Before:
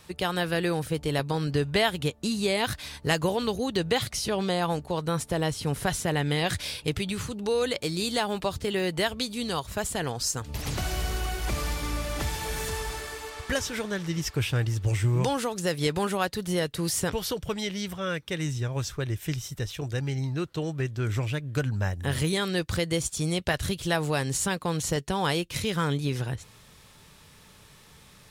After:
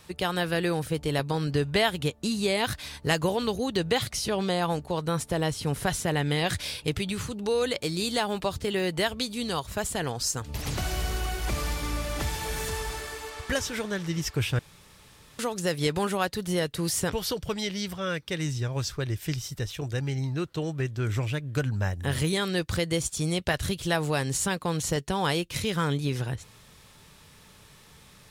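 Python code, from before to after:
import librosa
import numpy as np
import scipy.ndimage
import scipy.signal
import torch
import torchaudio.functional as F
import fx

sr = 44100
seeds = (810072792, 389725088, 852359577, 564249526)

y = fx.peak_eq(x, sr, hz=4700.0, db=6.0, octaves=0.32, at=(17.27, 19.6))
y = fx.edit(y, sr, fx.room_tone_fill(start_s=14.59, length_s=0.8), tone=tone)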